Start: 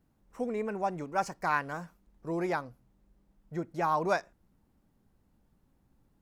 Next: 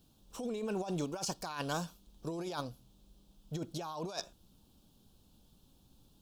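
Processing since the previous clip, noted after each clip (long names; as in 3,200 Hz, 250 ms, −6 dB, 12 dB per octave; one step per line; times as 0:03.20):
high shelf with overshoot 2,600 Hz +9 dB, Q 3
notch filter 2,000 Hz, Q 7.3
compressor whose output falls as the input rises −37 dBFS, ratio −1
level −1 dB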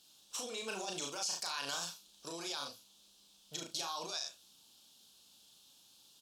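resonant band-pass 5,300 Hz, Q 0.67
ambience of single reflections 36 ms −3.5 dB, 71 ms −12.5 dB
brickwall limiter −37.5 dBFS, peak gain reduction 14 dB
level +10.5 dB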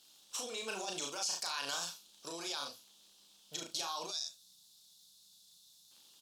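surface crackle 70 per second −54 dBFS
gain on a spectral selection 0:04.11–0:05.91, 210–3,400 Hz −12 dB
low-shelf EQ 170 Hz −8 dB
level +1 dB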